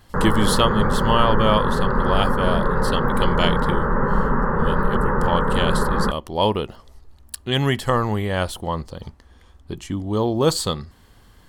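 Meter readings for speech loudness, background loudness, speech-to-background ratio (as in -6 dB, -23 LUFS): -23.5 LUFS, -22.0 LUFS, -1.5 dB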